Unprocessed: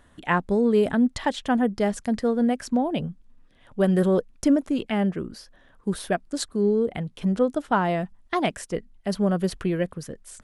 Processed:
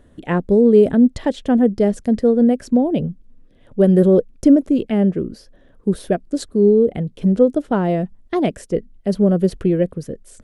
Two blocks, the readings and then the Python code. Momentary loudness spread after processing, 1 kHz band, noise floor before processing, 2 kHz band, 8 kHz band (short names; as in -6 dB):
11 LU, -1.0 dB, -57 dBFS, -3.0 dB, n/a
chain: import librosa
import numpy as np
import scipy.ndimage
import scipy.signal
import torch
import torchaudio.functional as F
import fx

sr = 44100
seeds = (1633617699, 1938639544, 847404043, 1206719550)

y = fx.low_shelf_res(x, sr, hz=680.0, db=9.0, q=1.5)
y = y * 10.0 ** (-2.0 / 20.0)